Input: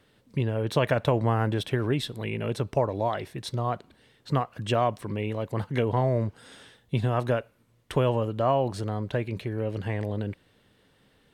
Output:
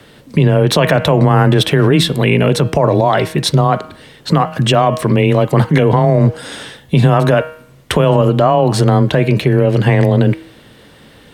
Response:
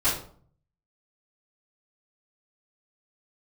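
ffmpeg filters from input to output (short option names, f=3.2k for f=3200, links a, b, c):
-af "bandreject=f=153.6:t=h:w=4,bandreject=f=307.2:t=h:w=4,bandreject=f=460.8:t=h:w=4,bandreject=f=614.4:t=h:w=4,bandreject=f=768:t=h:w=4,bandreject=f=921.6:t=h:w=4,bandreject=f=1.0752k:t=h:w=4,bandreject=f=1.2288k:t=h:w=4,bandreject=f=1.3824k:t=h:w=4,bandreject=f=1.536k:t=h:w=4,bandreject=f=1.6896k:t=h:w=4,bandreject=f=1.8432k:t=h:w=4,bandreject=f=1.9968k:t=h:w=4,bandreject=f=2.1504k:t=h:w=4,bandreject=f=2.304k:t=h:w=4,bandreject=f=2.4576k:t=h:w=4,bandreject=f=2.6112k:t=h:w=4,bandreject=f=2.7648k:t=h:w=4,bandreject=f=2.9184k:t=h:w=4,bandreject=f=3.072k:t=h:w=4,bandreject=f=3.2256k:t=h:w=4,afreqshift=17,alimiter=level_in=21.5dB:limit=-1dB:release=50:level=0:latency=1,volume=-1dB"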